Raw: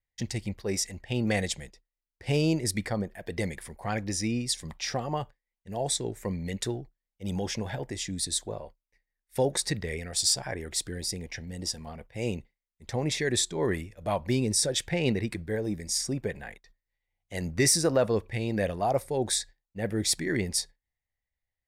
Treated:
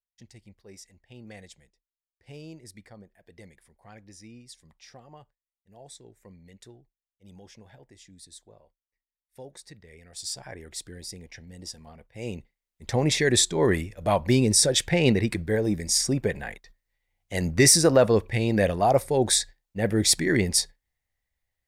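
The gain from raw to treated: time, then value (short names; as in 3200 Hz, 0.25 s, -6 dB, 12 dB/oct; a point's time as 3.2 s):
9.85 s -18 dB
10.43 s -6.5 dB
12.05 s -6.5 dB
12.9 s +6 dB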